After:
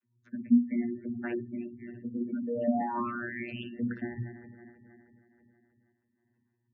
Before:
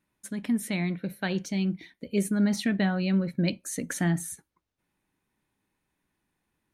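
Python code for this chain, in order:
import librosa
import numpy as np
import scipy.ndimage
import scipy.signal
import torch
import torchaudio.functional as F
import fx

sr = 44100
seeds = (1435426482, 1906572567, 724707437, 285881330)

p1 = fx.reverse_delay_fb(x, sr, ms=160, feedback_pct=73, wet_db=-13)
p2 = fx.peak_eq(p1, sr, hz=610.0, db=-11.5, octaves=1.7)
p3 = fx.over_compress(p2, sr, threshold_db=-30.0, ratio=-0.5)
p4 = p2 + (p3 * librosa.db_to_amplitude(1.0))
p5 = fx.spec_paint(p4, sr, seeds[0], shape='rise', start_s=2.46, length_s=1.17, low_hz=440.0, high_hz=3100.0, level_db=-26.0)
p6 = fx.vocoder(p5, sr, bands=32, carrier='saw', carrier_hz=119.0)
p7 = fx.air_absorb(p6, sr, metres=310.0)
p8 = p7 + fx.room_flutter(p7, sr, wall_m=9.9, rt60_s=0.35, dry=0)
p9 = fx.spec_gate(p8, sr, threshold_db=-25, keep='strong')
p10 = fx.am_noise(p9, sr, seeds[1], hz=5.7, depth_pct=60)
y = p10 * librosa.db_to_amplitude(-3.0)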